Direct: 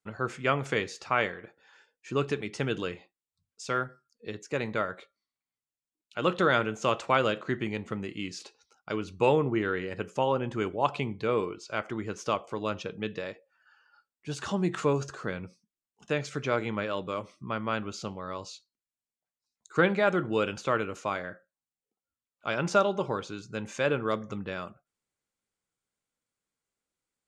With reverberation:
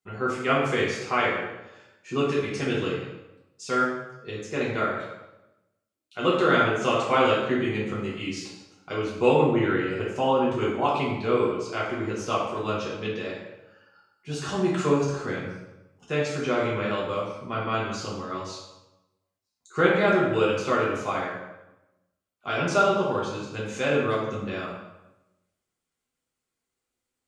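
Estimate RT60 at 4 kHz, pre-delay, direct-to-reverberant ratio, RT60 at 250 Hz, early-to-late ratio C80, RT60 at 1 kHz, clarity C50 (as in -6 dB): 0.75 s, 3 ms, -6.5 dB, 1.0 s, 4.5 dB, 0.90 s, 1.5 dB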